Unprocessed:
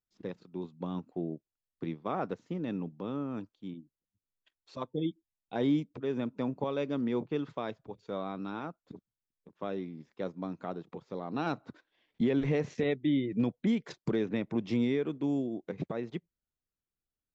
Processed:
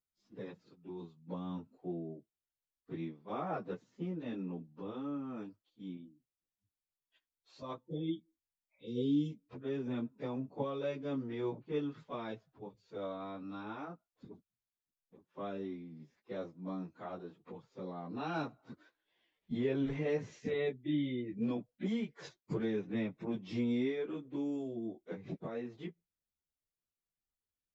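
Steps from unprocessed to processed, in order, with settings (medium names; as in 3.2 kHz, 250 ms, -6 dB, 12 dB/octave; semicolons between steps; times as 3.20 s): spectral replace 5.49–5.80 s, 540–2600 Hz after; plain phase-vocoder stretch 1.6×; trim -2.5 dB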